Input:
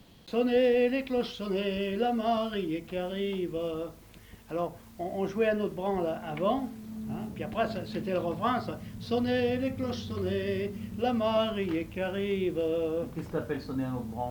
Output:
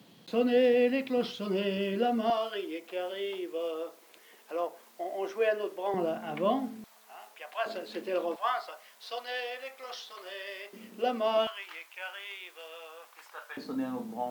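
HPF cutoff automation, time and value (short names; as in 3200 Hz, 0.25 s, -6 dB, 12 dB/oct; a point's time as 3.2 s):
HPF 24 dB/oct
140 Hz
from 2.3 s 380 Hz
from 5.94 s 180 Hz
from 6.84 s 720 Hz
from 7.66 s 320 Hz
from 8.36 s 670 Hz
from 10.73 s 290 Hz
from 11.47 s 890 Hz
from 13.57 s 210 Hz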